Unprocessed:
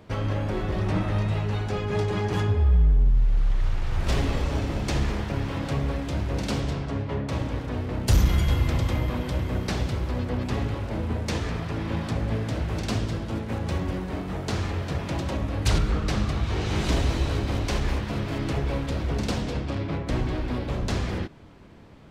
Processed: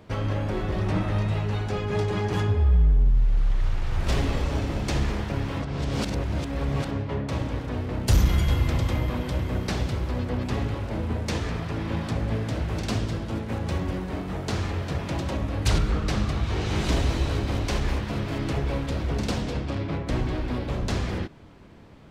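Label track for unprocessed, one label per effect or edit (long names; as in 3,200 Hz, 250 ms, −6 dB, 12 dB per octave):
5.620000	6.910000	reverse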